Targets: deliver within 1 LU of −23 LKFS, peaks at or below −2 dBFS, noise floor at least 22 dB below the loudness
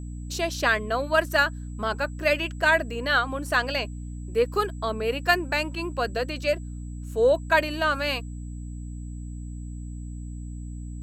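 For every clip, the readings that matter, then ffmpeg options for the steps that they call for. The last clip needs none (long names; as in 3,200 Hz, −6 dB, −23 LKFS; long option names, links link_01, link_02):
mains hum 60 Hz; hum harmonics up to 300 Hz; level of the hum −33 dBFS; interfering tone 7,800 Hz; level of the tone −55 dBFS; integrated loudness −25.0 LKFS; sample peak −6.0 dBFS; target loudness −23.0 LKFS
→ -af "bandreject=frequency=60:width_type=h:width=6,bandreject=frequency=120:width_type=h:width=6,bandreject=frequency=180:width_type=h:width=6,bandreject=frequency=240:width_type=h:width=6,bandreject=frequency=300:width_type=h:width=6"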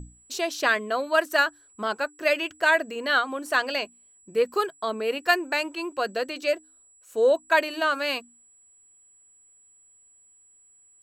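mains hum none found; interfering tone 7,800 Hz; level of the tone −55 dBFS
→ -af "bandreject=frequency=7800:width=30"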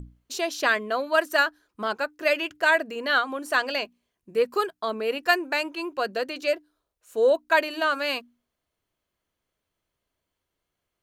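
interfering tone none found; integrated loudness −25.0 LKFS; sample peak −7.0 dBFS; target loudness −23.0 LKFS
→ -af "volume=2dB"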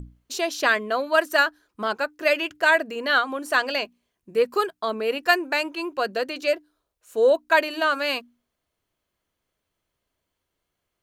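integrated loudness −23.0 LKFS; sample peak −5.0 dBFS; background noise floor −81 dBFS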